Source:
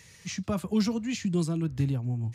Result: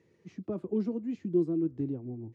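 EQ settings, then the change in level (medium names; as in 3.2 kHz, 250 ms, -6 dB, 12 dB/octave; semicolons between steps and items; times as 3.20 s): band-pass filter 350 Hz, Q 3.7; +6.0 dB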